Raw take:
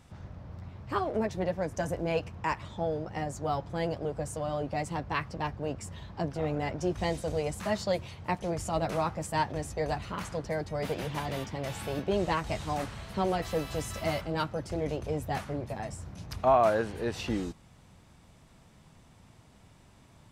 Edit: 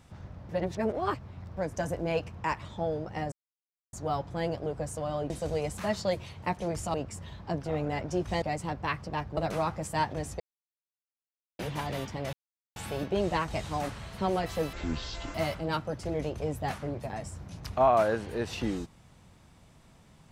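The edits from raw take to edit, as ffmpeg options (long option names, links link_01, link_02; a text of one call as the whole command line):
ffmpeg -i in.wav -filter_complex "[0:a]asplit=13[link_01][link_02][link_03][link_04][link_05][link_06][link_07][link_08][link_09][link_10][link_11][link_12][link_13];[link_01]atrim=end=0.492[link_14];[link_02]atrim=start=0.488:end=1.572,asetpts=PTS-STARTPTS,areverse[link_15];[link_03]atrim=start=1.568:end=3.32,asetpts=PTS-STARTPTS,afade=type=out:start_time=1.748:duration=0.004:curve=hsin,apad=pad_dur=0.61[link_16];[link_04]atrim=start=3.32:end=4.692,asetpts=PTS-STARTPTS,afade=type=in:duration=0.004:curve=hsin[link_17];[link_05]atrim=start=7.118:end=8.762[link_18];[link_06]atrim=start=5.638:end=7.122[link_19];[link_07]atrim=start=4.688:end=5.642[link_20];[link_08]atrim=start=8.758:end=9.79,asetpts=PTS-STARTPTS,afade=type=out:start_time=1.028:duration=0.004:curve=hsin[link_21];[link_09]atrim=start=9.79:end=10.98,asetpts=PTS-STARTPTS,volume=0[link_22];[link_10]atrim=start=10.98:end=11.72,asetpts=PTS-STARTPTS,afade=type=in:duration=0.004:curve=hsin,afade=type=out:start_time=0.736:duration=0.004:curve=hsin,apad=pad_dur=0.43[link_23];[link_11]atrim=start=11.72:end=13.694,asetpts=PTS-STARTPTS,afade=type=in:duration=0.004:curve=hsin[link_24];[link_12]atrim=start=13.69:end=14.01,asetpts=PTS-STARTPTS,asetrate=22932,aresample=44100,atrim=end_sample=27138,asetpts=PTS-STARTPTS[link_25];[link_13]atrim=start=14.006[link_26];[link_14][link_15]acrossfade=duration=0.004:curve1=hsin:curve2=hsin[link_27];[link_16][link_17]concat=n=2:v=0:a=1[link_28];[link_27][link_28]acrossfade=duration=0.004:curve1=hsin:curve2=hsin[link_29];[link_29][link_18]acrossfade=duration=0.004:curve1=hsin:curve2=hsin[link_30];[link_30][link_19]acrossfade=duration=0.004:curve1=hsin:curve2=hsin[link_31];[link_31][link_20]acrossfade=duration=0.004:curve1=hsin:curve2=hsin[link_32];[link_21][link_22][link_23][link_24]concat=n=4:v=0:a=1[link_33];[link_32][link_33]acrossfade=duration=0.004:curve1=hsin:curve2=hsin[link_34];[link_34][link_25]acrossfade=duration=0.004:curve1=hsin:curve2=hsin[link_35];[link_35][link_26]acrossfade=duration=0.004:curve1=hsin:curve2=hsin" out.wav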